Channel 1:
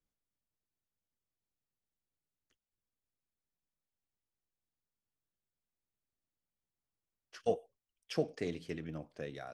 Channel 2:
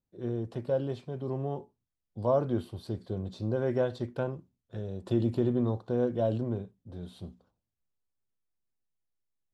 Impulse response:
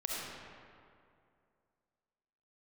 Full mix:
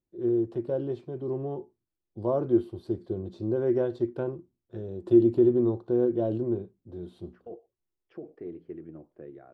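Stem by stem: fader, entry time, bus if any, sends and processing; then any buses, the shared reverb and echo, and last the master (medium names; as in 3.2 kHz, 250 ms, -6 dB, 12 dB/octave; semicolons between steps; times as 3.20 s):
-6.0 dB, 0.00 s, no send, low-pass 1.4 kHz 12 dB/octave; peak limiter -29.5 dBFS, peak gain reduction 10.5 dB
-2.5 dB, 0.00 s, no send, none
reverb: none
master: treble shelf 2.6 kHz -8 dB; small resonant body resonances 350 Hz, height 15 dB, ringing for 60 ms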